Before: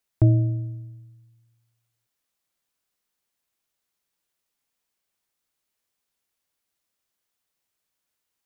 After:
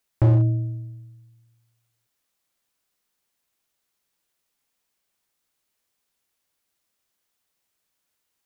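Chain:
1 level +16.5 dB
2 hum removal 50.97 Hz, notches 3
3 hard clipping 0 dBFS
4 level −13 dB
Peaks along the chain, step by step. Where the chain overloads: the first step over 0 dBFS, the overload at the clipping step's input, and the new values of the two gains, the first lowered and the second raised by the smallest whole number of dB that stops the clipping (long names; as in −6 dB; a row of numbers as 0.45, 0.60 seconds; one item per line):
+9.0, +8.0, 0.0, −13.0 dBFS
step 1, 8.0 dB
step 1 +8.5 dB, step 4 −5 dB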